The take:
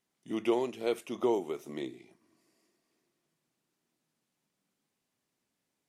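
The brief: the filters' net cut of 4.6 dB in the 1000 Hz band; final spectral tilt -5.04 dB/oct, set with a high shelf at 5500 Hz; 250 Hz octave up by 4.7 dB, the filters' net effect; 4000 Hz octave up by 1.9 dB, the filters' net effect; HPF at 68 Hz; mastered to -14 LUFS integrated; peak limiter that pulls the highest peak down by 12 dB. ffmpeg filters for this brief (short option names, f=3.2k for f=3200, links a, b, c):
-af "highpass=68,equalizer=f=250:t=o:g=8,equalizer=f=1k:t=o:g=-6.5,equalizer=f=4k:t=o:g=4,highshelf=f=5.5k:g=-3,volume=21.5dB,alimiter=limit=-3.5dB:level=0:latency=1"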